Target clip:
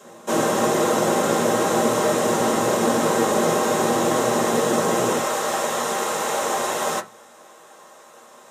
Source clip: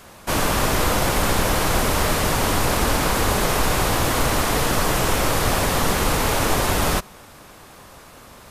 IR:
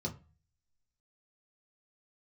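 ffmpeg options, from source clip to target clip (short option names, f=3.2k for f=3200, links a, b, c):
-filter_complex "[0:a]asetnsamples=n=441:p=0,asendcmd='5.18 highpass f 660',highpass=310[a];[1:a]atrim=start_sample=2205,asetrate=66150,aresample=44100[b];[a][b]afir=irnorm=-1:irlink=0"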